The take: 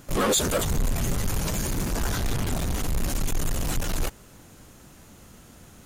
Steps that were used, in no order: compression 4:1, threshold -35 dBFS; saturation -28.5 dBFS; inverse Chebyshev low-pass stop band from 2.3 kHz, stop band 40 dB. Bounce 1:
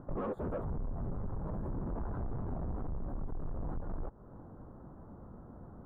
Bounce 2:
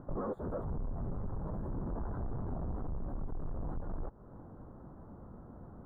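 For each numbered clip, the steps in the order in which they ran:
inverse Chebyshev low-pass > compression > saturation; compression > saturation > inverse Chebyshev low-pass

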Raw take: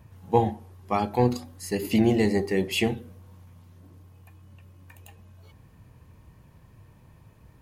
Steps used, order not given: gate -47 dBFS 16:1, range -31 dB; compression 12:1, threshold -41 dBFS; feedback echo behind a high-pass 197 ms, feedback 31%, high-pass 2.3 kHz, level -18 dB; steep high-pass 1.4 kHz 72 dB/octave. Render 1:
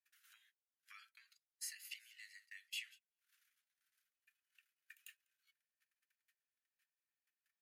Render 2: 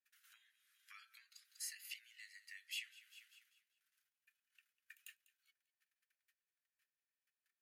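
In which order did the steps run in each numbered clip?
compression > feedback echo behind a high-pass > gate > steep high-pass; gate > feedback echo behind a high-pass > compression > steep high-pass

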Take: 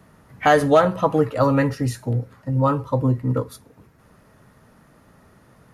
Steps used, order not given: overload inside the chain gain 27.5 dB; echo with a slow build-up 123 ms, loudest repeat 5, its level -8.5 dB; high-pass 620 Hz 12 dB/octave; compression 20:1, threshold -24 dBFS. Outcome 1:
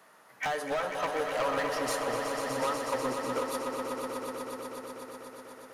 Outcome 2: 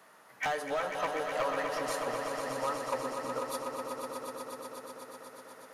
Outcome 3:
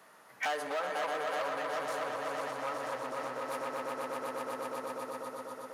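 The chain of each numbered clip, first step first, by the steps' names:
high-pass > compression > overload inside the chain > echo with a slow build-up; compression > high-pass > overload inside the chain > echo with a slow build-up; echo with a slow build-up > compression > overload inside the chain > high-pass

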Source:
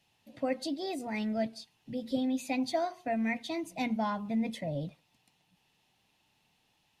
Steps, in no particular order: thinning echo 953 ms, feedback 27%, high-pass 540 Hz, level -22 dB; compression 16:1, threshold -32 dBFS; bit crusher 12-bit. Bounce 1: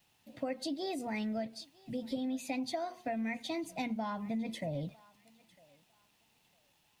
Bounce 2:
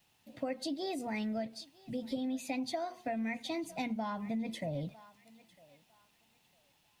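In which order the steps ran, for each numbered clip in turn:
bit crusher > compression > thinning echo; thinning echo > bit crusher > compression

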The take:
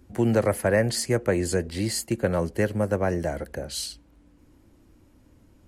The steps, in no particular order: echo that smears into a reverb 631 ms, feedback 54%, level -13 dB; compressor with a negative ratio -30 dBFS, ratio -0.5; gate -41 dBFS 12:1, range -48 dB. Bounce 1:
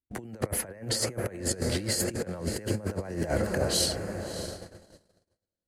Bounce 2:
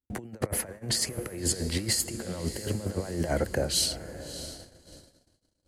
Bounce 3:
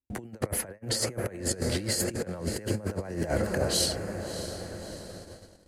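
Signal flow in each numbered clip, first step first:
echo that smears into a reverb > gate > compressor with a negative ratio; compressor with a negative ratio > echo that smears into a reverb > gate; echo that smears into a reverb > compressor with a negative ratio > gate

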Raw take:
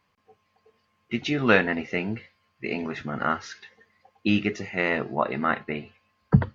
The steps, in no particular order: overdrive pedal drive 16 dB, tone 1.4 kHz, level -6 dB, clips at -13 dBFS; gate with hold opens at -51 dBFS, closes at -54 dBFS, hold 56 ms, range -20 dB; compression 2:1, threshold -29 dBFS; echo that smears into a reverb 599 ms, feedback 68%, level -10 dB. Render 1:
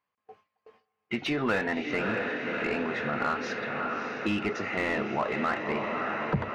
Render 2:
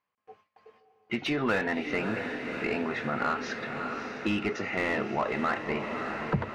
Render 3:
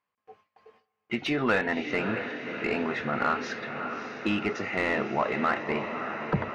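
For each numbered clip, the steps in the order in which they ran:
echo that smears into a reverb > gate with hold > overdrive pedal > compression; overdrive pedal > gate with hold > echo that smears into a reverb > compression; compression > echo that smears into a reverb > overdrive pedal > gate with hold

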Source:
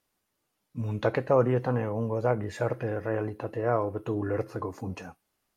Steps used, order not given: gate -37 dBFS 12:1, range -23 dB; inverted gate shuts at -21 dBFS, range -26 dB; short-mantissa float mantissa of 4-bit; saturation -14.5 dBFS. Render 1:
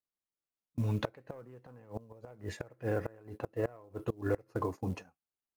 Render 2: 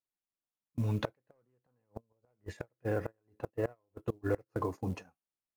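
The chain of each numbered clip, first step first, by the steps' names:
gate > saturation > short-mantissa float > inverted gate; saturation > short-mantissa float > inverted gate > gate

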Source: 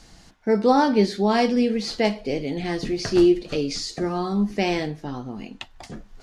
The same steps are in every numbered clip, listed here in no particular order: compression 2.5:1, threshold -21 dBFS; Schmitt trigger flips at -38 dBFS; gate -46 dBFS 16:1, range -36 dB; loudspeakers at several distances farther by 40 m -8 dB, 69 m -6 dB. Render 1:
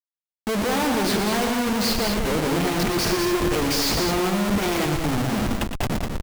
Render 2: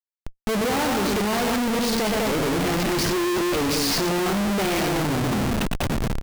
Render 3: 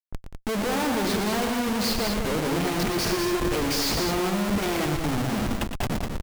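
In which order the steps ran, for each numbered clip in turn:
gate > Schmitt trigger > compression > loudspeakers at several distances; loudspeakers at several distances > gate > Schmitt trigger > compression; compression > Schmitt trigger > loudspeakers at several distances > gate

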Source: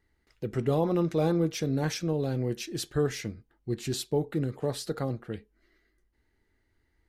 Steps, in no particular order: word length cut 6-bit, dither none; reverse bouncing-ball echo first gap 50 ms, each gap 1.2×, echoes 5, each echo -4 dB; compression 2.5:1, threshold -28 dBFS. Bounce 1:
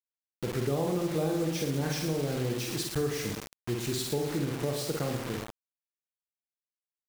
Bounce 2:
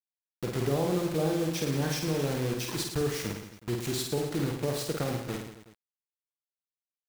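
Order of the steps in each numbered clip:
reverse bouncing-ball echo > word length cut > compression; word length cut > compression > reverse bouncing-ball echo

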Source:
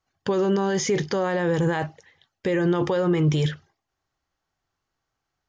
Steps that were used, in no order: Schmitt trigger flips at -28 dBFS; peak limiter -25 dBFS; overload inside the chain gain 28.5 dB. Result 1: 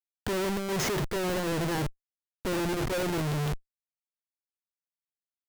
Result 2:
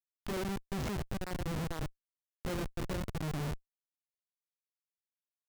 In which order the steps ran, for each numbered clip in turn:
Schmitt trigger > peak limiter > overload inside the chain; peak limiter > Schmitt trigger > overload inside the chain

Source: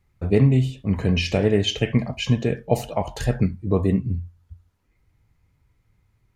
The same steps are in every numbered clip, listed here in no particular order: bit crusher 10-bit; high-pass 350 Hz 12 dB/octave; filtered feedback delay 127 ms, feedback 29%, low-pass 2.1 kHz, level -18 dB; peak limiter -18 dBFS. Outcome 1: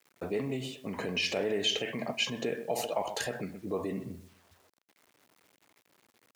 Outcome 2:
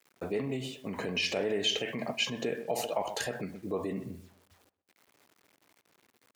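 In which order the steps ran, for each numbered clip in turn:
filtered feedback delay > peak limiter > bit crusher > high-pass; bit crusher > filtered feedback delay > peak limiter > high-pass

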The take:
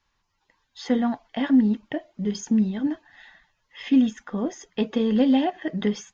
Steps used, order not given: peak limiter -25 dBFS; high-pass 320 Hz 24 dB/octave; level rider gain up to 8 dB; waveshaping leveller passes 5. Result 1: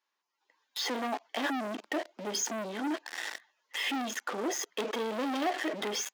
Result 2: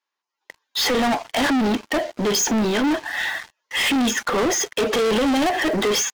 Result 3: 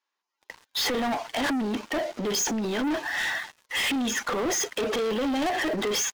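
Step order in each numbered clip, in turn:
level rider > waveshaping leveller > peak limiter > high-pass; high-pass > peak limiter > level rider > waveshaping leveller; level rider > peak limiter > high-pass > waveshaping leveller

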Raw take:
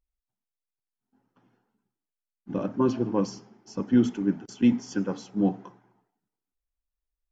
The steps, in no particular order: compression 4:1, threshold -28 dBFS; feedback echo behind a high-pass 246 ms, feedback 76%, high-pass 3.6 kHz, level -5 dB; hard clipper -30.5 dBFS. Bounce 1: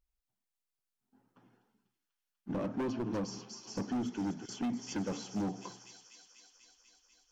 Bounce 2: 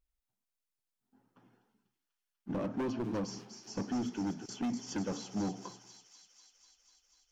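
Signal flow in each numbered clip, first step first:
feedback echo behind a high-pass > compression > hard clipper; compression > hard clipper > feedback echo behind a high-pass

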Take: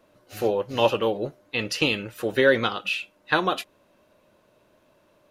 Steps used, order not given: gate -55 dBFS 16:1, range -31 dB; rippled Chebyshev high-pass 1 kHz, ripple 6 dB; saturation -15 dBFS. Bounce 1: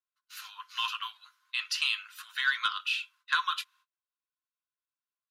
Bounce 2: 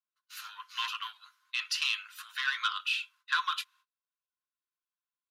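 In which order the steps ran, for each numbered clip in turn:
gate > rippled Chebyshev high-pass > saturation; saturation > gate > rippled Chebyshev high-pass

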